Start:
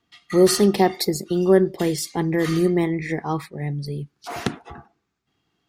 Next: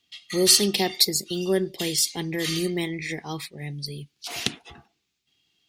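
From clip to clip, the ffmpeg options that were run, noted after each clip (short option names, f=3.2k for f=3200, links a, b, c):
-af "highshelf=f=2k:t=q:w=1.5:g=13,volume=-7.5dB"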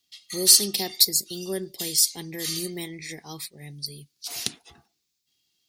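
-af "aexciter=amount=4:drive=2.8:freq=4.1k,volume=-7.5dB"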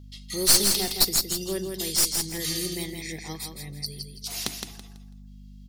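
-filter_complex "[0:a]aeval=exprs='clip(val(0),-1,0.075)':c=same,aeval=exprs='val(0)+0.00631*(sin(2*PI*50*n/s)+sin(2*PI*2*50*n/s)/2+sin(2*PI*3*50*n/s)/3+sin(2*PI*4*50*n/s)/4+sin(2*PI*5*50*n/s)/5)':c=same,asplit=2[a][b];[b]aecho=0:1:165|330|495|660:0.531|0.143|0.0387|0.0104[c];[a][c]amix=inputs=2:normalize=0"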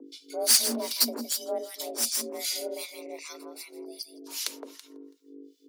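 -filter_complex "[0:a]afreqshift=230,acrossover=split=1200[a][b];[a]aeval=exprs='val(0)*(1-1/2+1/2*cos(2*PI*2.6*n/s))':c=same[c];[b]aeval=exprs='val(0)*(1-1/2-1/2*cos(2*PI*2.6*n/s))':c=same[d];[c][d]amix=inputs=2:normalize=0"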